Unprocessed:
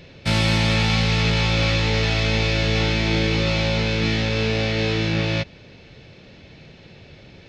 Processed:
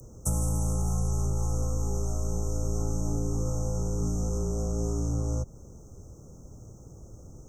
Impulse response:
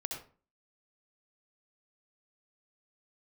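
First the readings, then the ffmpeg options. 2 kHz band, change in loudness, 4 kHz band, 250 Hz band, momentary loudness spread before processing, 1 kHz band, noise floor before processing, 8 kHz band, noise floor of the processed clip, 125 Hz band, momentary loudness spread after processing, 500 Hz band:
under -40 dB, -10.0 dB, -30.5 dB, -10.0 dB, 3 LU, -13.5 dB, -47 dBFS, +0.5 dB, -49 dBFS, -7.5 dB, 20 LU, -11.0 dB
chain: -filter_complex "[0:a]lowshelf=f=290:g=9.5,acrossover=split=200|440|1500[s0][s1][s2][s3];[s3]alimiter=limit=0.1:level=0:latency=1:release=356[s4];[s0][s1][s2][s4]amix=inputs=4:normalize=0,acompressor=threshold=0.141:ratio=6,afreqshift=-40,aexciter=amount=13.6:drive=7.3:freq=6400,asuperstop=centerf=2800:order=20:qfactor=0.64,volume=0.422"

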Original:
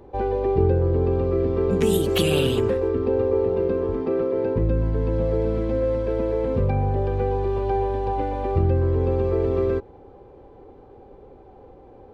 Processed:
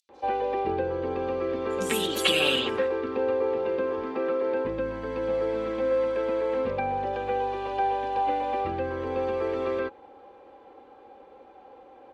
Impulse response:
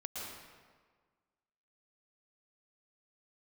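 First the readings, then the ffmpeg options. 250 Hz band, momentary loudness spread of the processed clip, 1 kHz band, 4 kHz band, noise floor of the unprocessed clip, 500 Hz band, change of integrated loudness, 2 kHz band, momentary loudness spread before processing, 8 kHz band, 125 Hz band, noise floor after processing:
-8.0 dB, 6 LU, +2.0 dB, +4.5 dB, -47 dBFS, -4.5 dB, -5.0 dB, +5.0 dB, 4 LU, no reading, -19.5 dB, -52 dBFS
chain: -filter_complex "[0:a]bandpass=f=2900:t=q:w=0.5:csg=0,aecho=1:1:3.7:0.44,acrossover=split=5000[s0][s1];[s0]adelay=90[s2];[s2][s1]amix=inputs=2:normalize=0,volume=1.88"

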